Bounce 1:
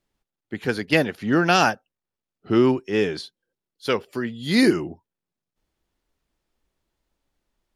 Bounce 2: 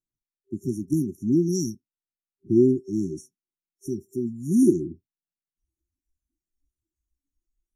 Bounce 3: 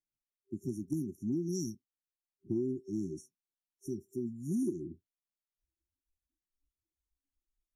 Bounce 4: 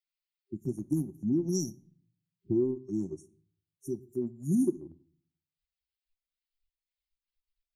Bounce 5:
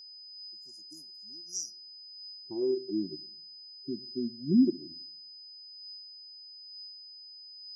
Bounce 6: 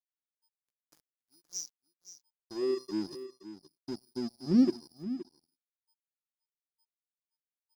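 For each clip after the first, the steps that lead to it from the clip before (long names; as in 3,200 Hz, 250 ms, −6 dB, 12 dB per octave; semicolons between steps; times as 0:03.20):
brick-wall band-stop 390–5,500 Hz; noise reduction from a noise print of the clip's start 17 dB
downward compressor 6 to 1, threshold −22 dBFS, peak gain reduction 9.5 dB; level −8 dB
spectral dynamics exaggerated over time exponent 1.5; transient designer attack −1 dB, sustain −7 dB; on a send at −14.5 dB: convolution reverb RT60 0.55 s, pre-delay 5 ms; on the sum: level +8 dB
band-pass filter sweep 6,200 Hz → 250 Hz, 0:01.60–0:03.09; steady tone 5,000 Hz −49 dBFS; auto-filter bell 1.1 Hz 370–3,800 Hz +11 dB; level +2.5 dB
dead-zone distortion −42.5 dBFS; single-tap delay 521 ms −13 dB; highs frequency-modulated by the lows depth 0.11 ms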